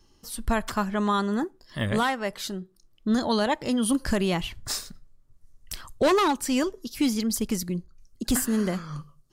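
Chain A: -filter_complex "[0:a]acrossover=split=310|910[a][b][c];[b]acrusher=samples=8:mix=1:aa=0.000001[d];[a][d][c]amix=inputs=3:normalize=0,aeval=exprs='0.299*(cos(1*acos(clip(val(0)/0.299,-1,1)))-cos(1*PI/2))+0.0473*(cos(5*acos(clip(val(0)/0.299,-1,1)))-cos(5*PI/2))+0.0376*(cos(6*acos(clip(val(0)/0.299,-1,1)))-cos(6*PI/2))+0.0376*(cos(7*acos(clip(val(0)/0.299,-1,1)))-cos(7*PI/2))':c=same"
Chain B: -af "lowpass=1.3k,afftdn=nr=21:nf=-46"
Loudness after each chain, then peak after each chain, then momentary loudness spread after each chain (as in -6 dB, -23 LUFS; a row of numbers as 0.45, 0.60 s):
-25.0, -27.5 LUFS; -11.0, -15.0 dBFS; 13, 14 LU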